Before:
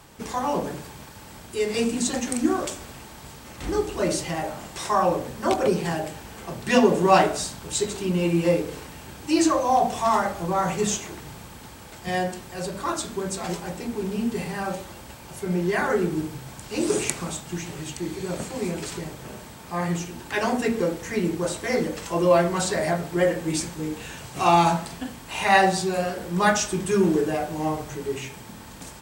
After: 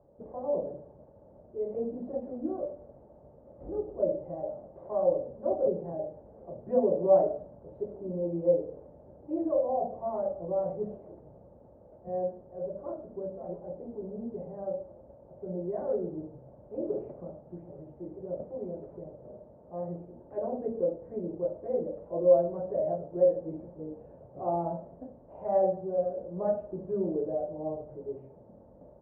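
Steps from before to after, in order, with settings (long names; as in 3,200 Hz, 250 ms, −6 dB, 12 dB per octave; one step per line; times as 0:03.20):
transistor ladder low-pass 620 Hz, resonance 75%
level −2 dB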